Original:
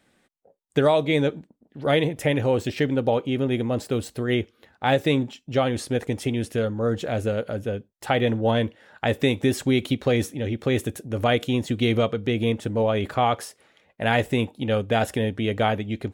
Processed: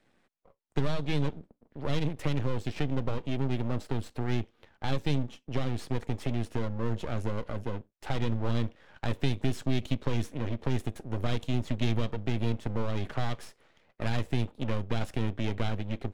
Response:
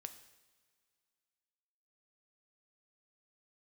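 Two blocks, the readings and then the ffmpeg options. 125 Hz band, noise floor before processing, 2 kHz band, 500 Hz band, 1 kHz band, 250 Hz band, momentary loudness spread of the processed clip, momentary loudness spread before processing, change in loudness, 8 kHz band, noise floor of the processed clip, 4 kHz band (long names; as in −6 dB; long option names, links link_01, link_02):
−3.5 dB, −67 dBFS, −12.0 dB, −13.5 dB, −12.5 dB, −8.5 dB, 6 LU, 7 LU, −9.0 dB, −11.0 dB, −71 dBFS, −10.0 dB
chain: -filter_complex "[0:a]aeval=exprs='max(val(0),0)':channel_layout=same,acrossover=split=240|3000[link_01][link_02][link_03];[link_02]acompressor=threshold=-34dB:ratio=6[link_04];[link_01][link_04][link_03]amix=inputs=3:normalize=0,aemphasis=mode=reproduction:type=50kf"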